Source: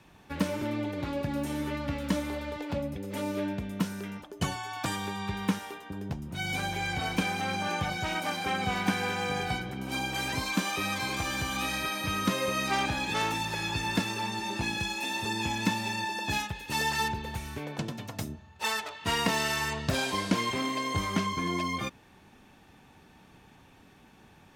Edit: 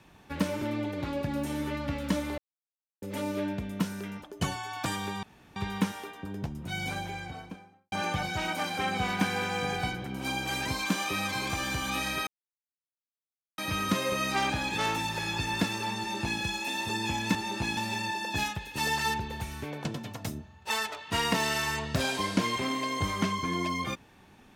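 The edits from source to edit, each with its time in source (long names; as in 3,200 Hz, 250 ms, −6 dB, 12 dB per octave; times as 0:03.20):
0:02.38–0:03.02: silence
0:05.23: splice in room tone 0.33 s
0:06.26–0:07.59: fade out and dull
0:11.94: splice in silence 1.31 s
0:14.34–0:14.76: duplicate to 0:15.71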